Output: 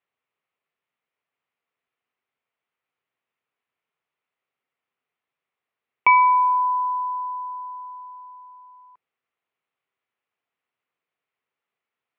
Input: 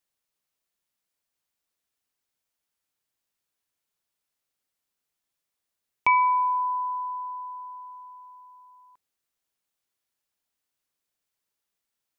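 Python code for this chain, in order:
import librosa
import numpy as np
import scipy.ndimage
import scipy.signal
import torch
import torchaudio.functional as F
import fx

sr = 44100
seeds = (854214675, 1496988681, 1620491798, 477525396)

y = fx.cabinet(x, sr, low_hz=180.0, low_slope=12, high_hz=2500.0, hz=(200.0, 310.0, 590.0, 880.0, 1600.0), db=(-9, -9, -5, -4, -6))
y = y * librosa.db_to_amplitude(8.0)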